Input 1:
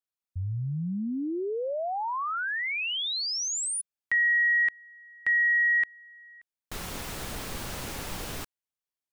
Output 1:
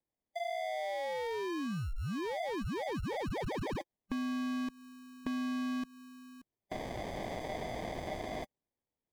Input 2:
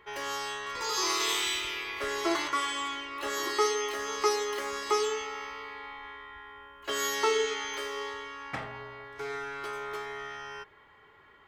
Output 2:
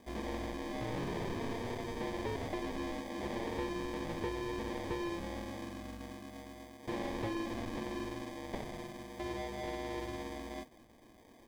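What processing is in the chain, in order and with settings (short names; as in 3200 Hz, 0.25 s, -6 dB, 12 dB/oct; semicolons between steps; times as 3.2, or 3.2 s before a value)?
band-swap scrambler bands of 2000 Hz; sample-and-hold 32×; soft clip -20.5 dBFS; compressor, threshold -33 dBFS; slew limiter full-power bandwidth 49 Hz; gain -1.5 dB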